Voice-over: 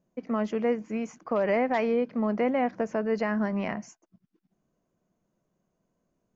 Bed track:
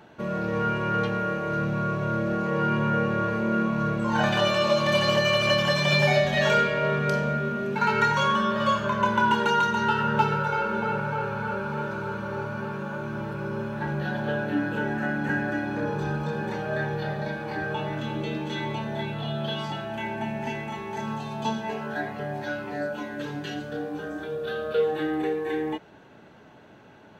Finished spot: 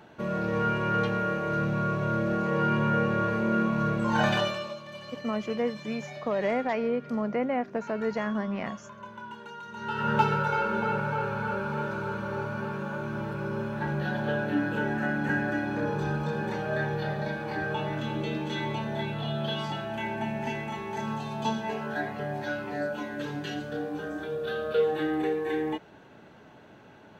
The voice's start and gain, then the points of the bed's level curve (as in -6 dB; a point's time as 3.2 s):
4.95 s, -2.5 dB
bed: 4.34 s -1 dB
4.83 s -20.5 dB
9.63 s -20.5 dB
10.1 s -1 dB